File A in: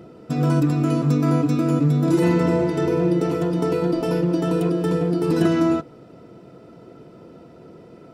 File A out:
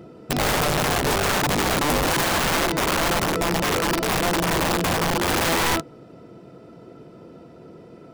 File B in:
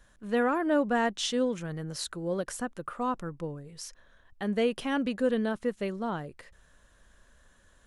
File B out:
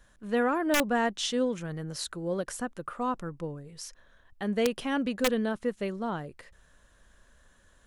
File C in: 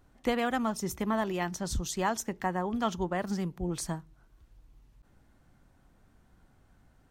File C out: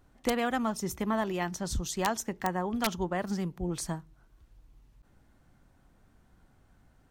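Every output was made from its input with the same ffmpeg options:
ffmpeg -i in.wav -af "aeval=exprs='(mod(6.68*val(0)+1,2)-1)/6.68':channel_layout=same" out.wav

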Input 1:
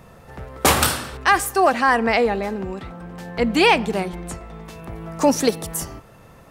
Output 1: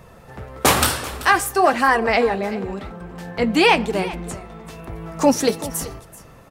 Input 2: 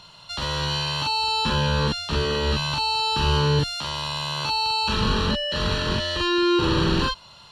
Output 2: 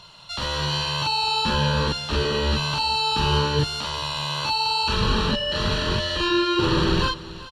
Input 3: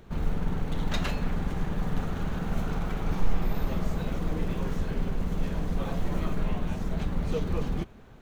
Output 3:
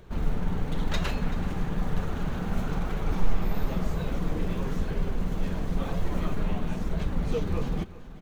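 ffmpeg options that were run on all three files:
ffmpeg -i in.wav -af "flanger=delay=1.8:depth=8.4:regen=-48:speed=1:shape=sinusoidal,aecho=1:1:384:0.141,volume=4.5dB" out.wav

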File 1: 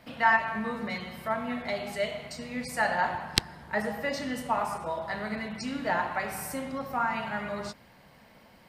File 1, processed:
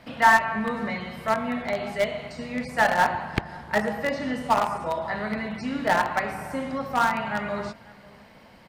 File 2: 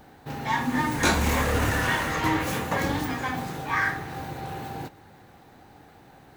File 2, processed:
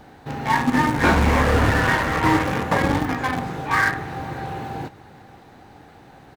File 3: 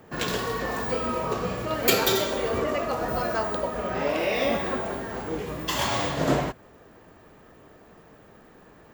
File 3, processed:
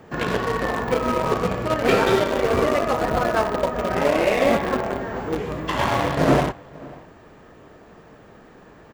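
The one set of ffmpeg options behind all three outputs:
ffmpeg -i in.wav -filter_complex "[0:a]aeval=exprs='(tanh(5.01*val(0)+0.05)-tanh(0.05))/5.01':channel_layout=same,acrossover=split=2600[link_01][link_02];[link_02]acompressor=threshold=-49dB:ratio=4:attack=1:release=60[link_03];[link_01][link_03]amix=inputs=2:normalize=0,asplit=2[link_04][link_05];[link_05]acrusher=bits=3:mix=0:aa=0.000001,volume=-9dB[link_06];[link_04][link_06]amix=inputs=2:normalize=0,highshelf=frequency=11000:gain=-11.5,asplit=2[link_07][link_08];[link_08]adelay=542.3,volume=-22dB,highshelf=frequency=4000:gain=-12.2[link_09];[link_07][link_09]amix=inputs=2:normalize=0,volume=5dB" out.wav

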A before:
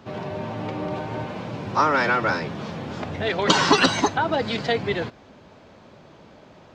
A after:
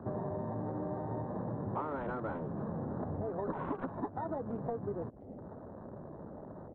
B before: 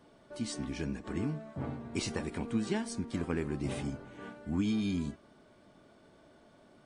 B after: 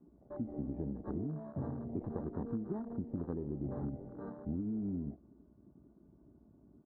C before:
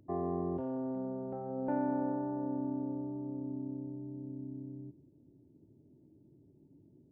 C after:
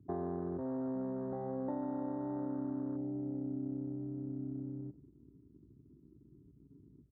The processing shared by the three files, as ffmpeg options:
ffmpeg -i in.wav -filter_complex "[0:a]asplit=2[link_01][link_02];[link_02]acrusher=samples=27:mix=1:aa=0.000001,volume=-8dB[link_03];[link_01][link_03]amix=inputs=2:normalize=0,lowpass=frequency=1200:width=0.5412,lowpass=frequency=1200:width=1.3066,acompressor=threshold=-34dB:ratio=12,aeval=exprs='val(0)+0.000398*(sin(2*PI*60*n/s)+sin(2*PI*2*60*n/s)/2+sin(2*PI*3*60*n/s)/3+sin(2*PI*4*60*n/s)/4+sin(2*PI*5*60*n/s)/5)':channel_layout=same,afwtdn=0.00447,asplit=2[link_04][link_05];[link_05]adelay=330,highpass=300,lowpass=3400,asoftclip=type=hard:threshold=-35dB,volume=-27dB[link_06];[link_04][link_06]amix=inputs=2:normalize=0" out.wav

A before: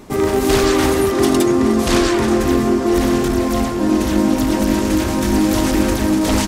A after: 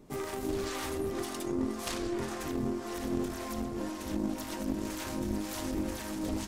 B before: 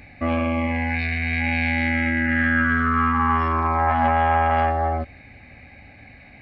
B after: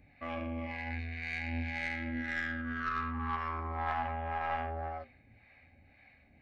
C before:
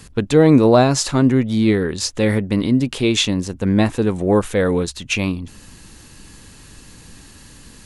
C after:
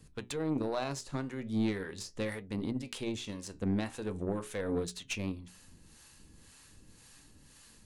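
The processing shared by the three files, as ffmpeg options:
ffmpeg -i in.wav -filter_complex "[0:a]flanger=delay=6.3:depth=8.1:regen=74:speed=0.41:shape=triangular,highshelf=frequency=6100:gain=3.5,alimiter=limit=-15dB:level=0:latency=1:release=184,acrossover=split=580[link_01][link_02];[link_01]aeval=exprs='val(0)*(1-0.7/2+0.7/2*cos(2*PI*1.9*n/s))':channel_layout=same[link_03];[link_02]aeval=exprs='val(0)*(1-0.7/2-0.7/2*cos(2*PI*1.9*n/s))':channel_layout=same[link_04];[link_03][link_04]amix=inputs=2:normalize=0,bandreject=frequency=60:width_type=h:width=6,bandreject=frequency=120:width_type=h:width=6,bandreject=frequency=180:width_type=h:width=6,bandreject=frequency=240:width_type=h:width=6,bandreject=frequency=300:width_type=h:width=6,bandreject=frequency=360:width_type=h:width=6,bandreject=frequency=420:width_type=h:width=6,aeval=exprs='0.2*(cos(1*acos(clip(val(0)/0.2,-1,1)))-cos(1*PI/2))+0.0282*(cos(3*acos(clip(val(0)/0.2,-1,1)))-cos(3*PI/2))+0.00562*(cos(6*acos(clip(val(0)/0.2,-1,1)))-cos(6*PI/2))':channel_layout=same,volume=-3.5dB" out.wav

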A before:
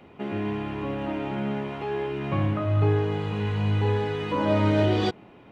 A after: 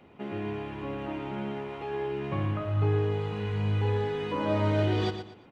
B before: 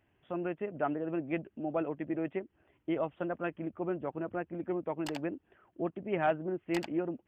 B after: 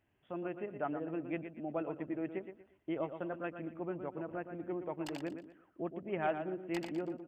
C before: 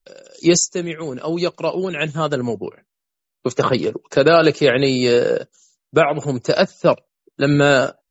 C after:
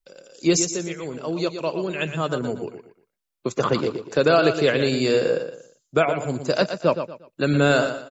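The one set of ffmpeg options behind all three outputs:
ffmpeg -i in.wav -af "aecho=1:1:118|236|354:0.355|0.106|0.0319,volume=-5dB" out.wav

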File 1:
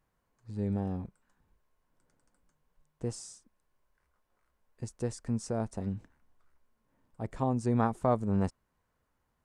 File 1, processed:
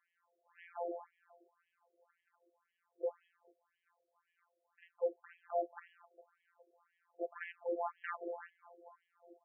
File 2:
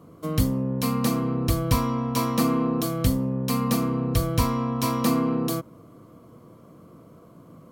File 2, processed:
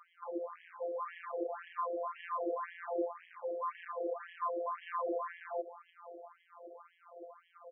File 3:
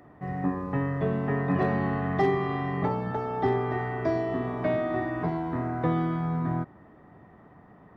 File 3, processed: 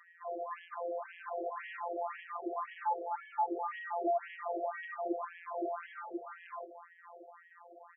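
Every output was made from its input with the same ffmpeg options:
ffmpeg -i in.wav -filter_complex "[0:a]acrossover=split=3400[link_01][link_02];[link_02]acompressor=threshold=-41dB:ratio=4:attack=1:release=60[link_03];[link_01][link_03]amix=inputs=2:normalize=0,alimiter=limit=-19.5dB:level=0:latency=1:release=51,acrossover=split=100|1300[link_04][link_05][link_06];[link_04]acompressor=threshold=-43dB:ratio=4[link_07];[link_05]acompressor=threshold=-28dB:ratio=4[link_08];[link_06]acompressor=threshold=-52dB:ratio=4[link_09];[link_07][link_08][link_09]amix=inputs=3:normalize=0,asplit=7[link_10][link_11][link_12][link_13][link_14][link_15][link_16];[link_11]adelay=410,afreqshift=-92,volume=-19dB[link_17];[link_12]adelay=820,afreqshift=-184,volume=-22.9dB[link_18];[link_13]adelay=1230,afreqshift=-276,volume=-26.8dB[link_19];[link_14]adelay=1640,afreqshift=-368,volume=-30.6dB[link_20];[link_15]adelay=2050,afreqshift=-460,volume=-34.5dB[link_21];[link_16]adelay=2460,afreqshift=-552,volume=-38.4dB[link_22];[link_10][link_17][link_18][link_19][link_20][link_21][link_22]amix=inputs=7:normalize=0,aeval=exprs='0.0668*(abs(mod(val(0)/0.0668+3,4)-2)-1)':channel_layout=same,afftfilt=real='hypot(re,im)*cos(PI*b)':imag='0':win_size=1024:overlap=0.75,aeval=exprs='clip(val(0),-1,0.0398)':channel_layout=same,afftfilt=real='re*between(b*sr/1024,480*pow(2400/480,0.5+0.5*sin(2*PI*1.9*pts/sr))/1.41,480*pow(2400/480,0.5+0.5*sin(2*PI*1.9*pts/sr))*1.41)':imag='im*between(b*sr/1024,480*pow(2400/480,0.5+0.5*sin(2*PI*1.9*pts/sr))/1.41,480*pow(2400/480,0.5+0.5*sin(2*PI*1.9*pts/sr))*1.41)':win_size=1024:overlap=0.75,volume=9dB" out.wav

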